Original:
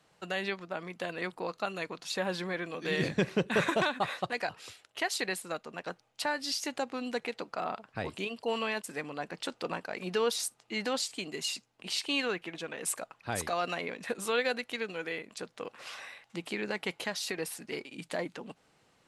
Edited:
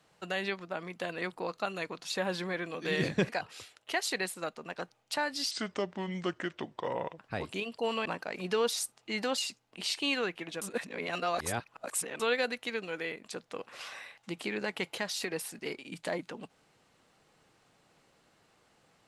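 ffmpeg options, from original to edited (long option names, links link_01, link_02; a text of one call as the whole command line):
ffmpeg -i in.wav -filter_complex "[0:a]asplit=8[link_01][link_02][link_03][link_04][link_05][link_06][link_07][link_08];[link_01]atrim=end=3.292[link_09];[link_02]atrim=start=4.368:end=6.594[link_10];[link_03]atrim=start=6.59:end=7.83,asetpts=PTS-STARTPTS,asetrate=32634,aresample=44100,atrim=end_sample=73897,asetpts=PTS-STARTPTS[link_11];[link_04]atrim=start=7.826:end=8.702[link_12];[link_05]atrim=start=9.678:end=11.002[link_13];[link_06]atrim=start=11.438:end=12.682[link_14];[link_07]atrim=start=12.678:end=14.262,asetpts=PTS-STARTPTS,areverse[link_15];[link_08]atrim=start=14.258[link_16];[link_09][link_10]acrossfade=duration=0.004:curve1=hsin:curve2=hsin[link_17];[link_17][link_11]acrossfade=duration=0.004:curve1=hsin:curve2=hsin[link_18];[link_18][link_12]acrossfade=duration=0.004:curve1=hsin:curve2=hsin[link_19];[link_19][link_13]acrossfade=duration=0.004:curve1=hsin:curve2=hsin[link_20];[link_20][link_14]acrossfade=duration=0.004:curve1=hsin:curve2=hsin[link_21];[link_21][link_15]acrossfade=duration=0.004:curve1=hsin:curve2=hsin[link_22];[link_22][link_16]acrossfade=duration=0.004:curve1=hsin:curve2=hsin" out.wav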